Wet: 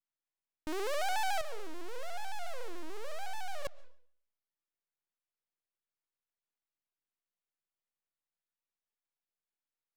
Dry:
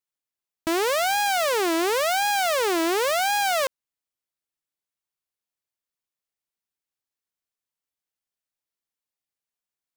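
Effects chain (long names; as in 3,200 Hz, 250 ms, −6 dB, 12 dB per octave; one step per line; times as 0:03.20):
bass and treble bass −4 dB, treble −14 dB
brickwall limiter −23.5 dBFS, peak gain reduction 7 dB
half-wave rectification
0:01.41–0:03.65: tuned comb filter 250 Hz, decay 0.8 s, mix 70%
convolution reverb RT60 0.60 s, pre-delay 90 ms, DRR 21.5 dB
pitch modulation by a square or saw wave square 6.9 Hz, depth 100 cents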